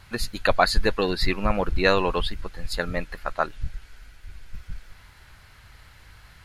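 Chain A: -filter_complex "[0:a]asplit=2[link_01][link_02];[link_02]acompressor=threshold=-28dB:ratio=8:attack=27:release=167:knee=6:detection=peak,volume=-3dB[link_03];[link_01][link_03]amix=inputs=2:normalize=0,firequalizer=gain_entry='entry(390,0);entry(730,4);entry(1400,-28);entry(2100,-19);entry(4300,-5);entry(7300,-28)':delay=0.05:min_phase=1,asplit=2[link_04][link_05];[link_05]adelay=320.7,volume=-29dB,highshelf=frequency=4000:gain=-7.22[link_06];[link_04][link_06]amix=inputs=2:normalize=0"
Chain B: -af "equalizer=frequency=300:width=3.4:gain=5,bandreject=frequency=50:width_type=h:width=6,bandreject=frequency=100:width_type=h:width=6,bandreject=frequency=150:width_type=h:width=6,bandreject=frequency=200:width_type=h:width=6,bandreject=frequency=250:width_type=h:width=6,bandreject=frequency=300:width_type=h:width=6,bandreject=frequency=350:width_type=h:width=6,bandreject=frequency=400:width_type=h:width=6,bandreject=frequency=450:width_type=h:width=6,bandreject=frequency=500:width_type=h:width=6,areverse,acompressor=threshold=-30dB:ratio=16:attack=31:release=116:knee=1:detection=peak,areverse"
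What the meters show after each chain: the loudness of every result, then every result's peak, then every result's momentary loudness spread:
−24.5, −34.0 LKFS; −4.0, −12.5 dBFS; 21, 19 LU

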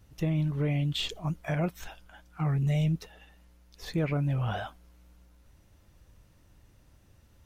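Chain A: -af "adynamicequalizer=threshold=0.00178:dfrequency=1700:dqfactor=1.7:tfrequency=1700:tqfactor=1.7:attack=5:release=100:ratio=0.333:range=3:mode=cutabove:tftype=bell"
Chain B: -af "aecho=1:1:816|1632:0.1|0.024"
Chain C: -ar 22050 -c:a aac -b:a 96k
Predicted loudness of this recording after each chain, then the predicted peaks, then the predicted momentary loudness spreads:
−30.5, −30.5, −30.5 LKFS; −19.5, −19.5, −19.5 dBFS; 12, 20, 11 LU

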